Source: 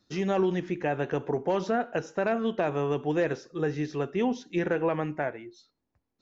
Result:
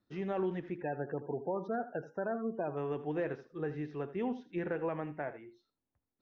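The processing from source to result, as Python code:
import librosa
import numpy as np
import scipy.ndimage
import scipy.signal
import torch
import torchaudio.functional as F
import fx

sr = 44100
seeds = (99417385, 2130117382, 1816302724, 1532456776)

y = fx.spec_gate(x, sr, threshold_db=-20, keep='strong', at=(0.75, 2.76), fade=0.02)
y = scipy.signal.sosfilt(scipy.signal.butter(2, 2400.0, 'lowpass', fs=sr, output='sos'), y)
y = y + 10.0 ** (-14.5 / 20.0) * np.pad(y, (int(80 * sr / 1000.0), 0))[:len(y)]
y = y * 10.0 ** (-8.5 / 20.0)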